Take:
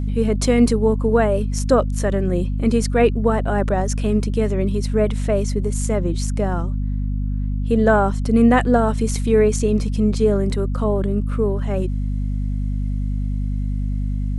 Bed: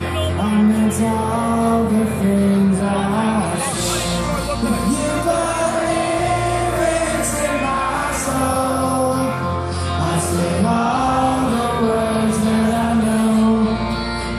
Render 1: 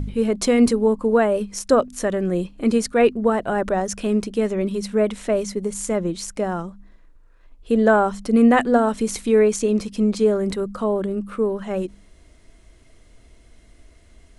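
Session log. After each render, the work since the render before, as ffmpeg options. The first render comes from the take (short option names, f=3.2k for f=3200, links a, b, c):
-af "bandreject=f=50:t=h:w=4,bandreject=f=100:t=h:w=4,bandreject=f=150:t=h:w=4,bandreject=f=200:t=h:w=4,bandreject=f=250:t=h:w=4"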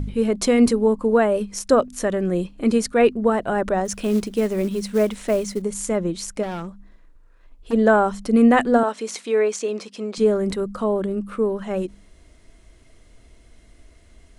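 -filter_complex "[0:a]asettb=1/sr,asplit=3[a][b][c];[a]atrim=end=3.854[d];[b]atrim=start=3.85:end=5.62,asetpts=PTS-STARTPTS,afade=t=in:d=0.004:c=qsin,afade=t=out:st=1.766:d=0.004:c=qsin,acrusher=bits=6:mode=log:mix=0:aa=0.000001[e];[c]atrim=start=5.616[f];[d][e]acrossfade=d=0.004:c1=hsin:c2=qsin[g];[g][f]acrossfade=d=0.004:c1=qsin:c2=hsin,asplit=3[h][i][j];[h]afade=t=out:st=6.42:d=0.02[k];[i]asoftclip=type=hard:threshold=-26dB,afade=t=in:st=6.42:d=0.02,afade=t=out:st=7.72:d=0.02[l];[j]afade=t=in:st=7.72:d=0.02[m];[k][l][m]amix=inputs=3:normalize=0,asettb=1/sr,asplit=3[n][o][p];[n]atrim=end=8.834[q];[o]atrim=start=8.83:end=10.18,asetpts=PTS-STARTPTS,afade=t=in:d=0.004:c=qsin,afade=t=out:st=1.346:d=0.004:c=qsin,highpass=440,lowpass=7.1k[r];[p]atrim=start=10.176[s];[q][r]acrossfade=d=0.004:c1=hsin:c2=qsin[t];[t][s]acrossfade=d=0.004:c1=qsin:c2=hsin"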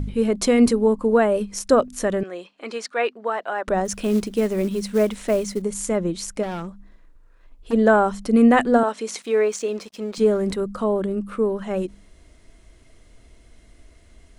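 -filter_complex "[0:a]asettb=1/sr,asplit=3[a][b][c];[a]atrim=end=2.234[d];[b]atrim=start=2.23:end=3.68,asetpts=PTS-STARTPTS,afade=t=in:d=0.004:c=qsin,afade=t=out:st=1.446:d=0.004:c=qsin,highpass=710,lowpass=5.1k[e];[c]atrim=start=3.676[f];[d][e]acrossfade=d=0.004:c1=hsin:c2=qsin[g];[g][f]acrossfade=d=0.004:c1=qsin:c2=hsin,asettb=1/sr,asplit=3[h][i][j];[h]atrim=end=9.224[k];[i]atrim=start=9.22:end=10.56,asetpts=PTS-STARTPTS,afade=t=in:d=0.004:c=qsin,afade=t=out:st=1.336:d=0.004:c=qsin,aeval=exprs='sgn(val(0))*max(abs(val(0))-0.00299,0)':c=same[l];[j]atrim=start=10.556[m];[k][l]acrossfade=d=0.004:c1=hsin:c2=qsin[n];[n][m]acrossfade=d=0.004:c1=qsin:c2=hsin"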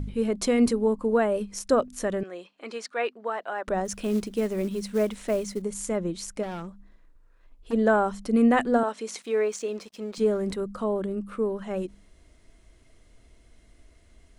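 -af "volume=-5.5dB"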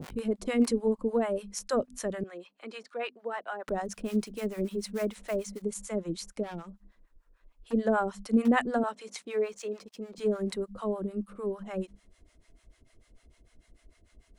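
-filter_complex "[0:a]acrossover=split=130|790[a][b][c];[a]aeval=exprs='(mod(50.1*val(0)+1,2)-1)/50.1':c=same[d];[d][b][c]amix=inputs=3:normalize=0,acrossover=split=630[e][f];[e]aeval=exprs='val(0)*(1-1/2+1/2*cos(2*PI*6.7*n/s))':c=same[g];[f]aeval=exprs='val(0)*(1-1/2-1/2*cos(2*PI*6.7*n/s))':c=same[h];[g][h]amix=inputs=2:normalize=0"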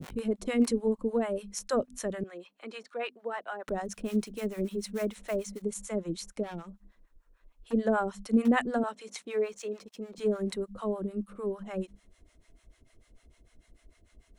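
-af "bandreject=f=4.8k:w=15,adynamicequalizer=threshold=0.00708:dfrequency=890:dqfactor=0.73:tfrequency=890:tqfactor=0.73:attack=5:release=100:ratio=0.375:range=1.5:mode=cutabove:tftype=bell"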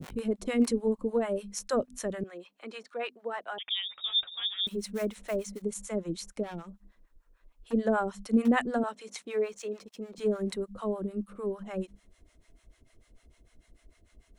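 -filter_complex "[0:a]asettb=1/sr,asplit=3[a][b][c];[a]atrim=end=1.014[d];[b]atrim=start=1.01:end=1.61,asetpts=PTS-STARTPTS,afade=t=in:d=0.004:c=qsin,afade=t=out:st=0.596:d=0.004:c=qsin,asplit=2[e][f];[f]adelay=15,volume=-12dB[g];[e][g]amix=inputs=2:normalize=0,atrim=end_sample=26460[h];[c]atrim=start=1.606[i];[d][h]acrossfade=d=0.004:c1=hsin:c2=qsin[j];[j][i]acrossfade=d=0.004:c1=qsin:c2=hsin,asettb=1/sr,asplit=3[k][l][m];[k]atrim=end=3.584[n];[l]atrim=start=3.58:end=4.67,asetpts=PTS-STARTPTS,afade=t=in:d=0.004:c=qsin,afade=t=out:st=1.086:d=0.004:c=qsin,lowpass=f=3.2k:t=q:w=0.5098,lowpass=f=3.2k:t=q:w=0.6013,lowpass=f=3.2k:t=q:w=0.9,lowpass=f=3.2k:t=q:w=2.563,afreqshift=-3800[o];[m]atrim=start=4.666[p];[n][o]acrossfade=d=0.004:c1=hsin:c2=qsin[q];[q][p]acrossfade=d=0.004:c1=qsin:c2=hsin"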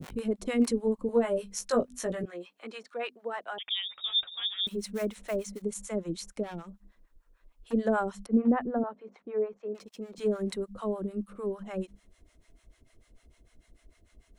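-filter_complex "[0:a]asettb=1/sr,asplit=3[a][b][c];[a]atrim=end=1.074[d];[b]atrim=start=1.07:end=2.67,asetpts=PTS-STARTPTS,afade=t=in:d=0.004:c=qsin,afade=t=out:st=1.596:d=0.004:c=qsin,asplit=2[e][f];[f]adelay=17,volume=-4dB[g];[e][g]amix=inputs=2:normalize=0,atrim=end_sample=70560[h];[c]atrim=start=2.666[i];[d][h]acrossfade=d=0.004:c1=hsin:c2=qsin[j];[j][i]acrossfade=d=0.004:c1=qsin:c2=hsin,asettb=1/sr,asplit=3[k][l][m];[k]atrim=end=8.264[n];[l]atrim=start=8.26:end=9.75,asetpts=PTS-STARTPTS,afade=t=in:d=0.004:c=qsin,afade=t=out:st=1.486:d=0.004:c=qsin,lowpass=1k[o];[m]atrim=start=9.746[p];[n][o]acrossfade=d=0.004:c1=hsin:c2=qsin[q];[q][p]acrossfade=d=0.004:c1=qsin:c2=hsin"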